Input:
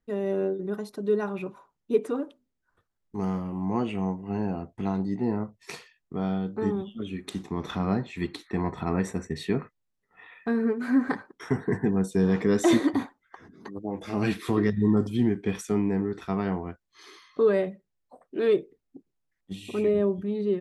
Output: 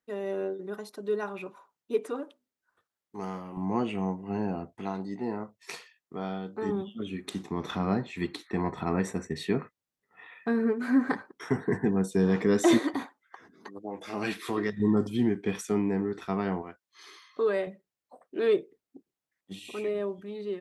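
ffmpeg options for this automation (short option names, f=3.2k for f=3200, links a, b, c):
-af "asetnsamples=n=441:p=0,asendcmd='3.57 highpass f 160;4.75 highpass f 470;6.69 highpass f 140;12.79 highpass f 540;14.8 highpass f 180;16.62 highpass f 670;17.67 highpass f 310;19.59 highpass f 840',highpass=f=580:p=1"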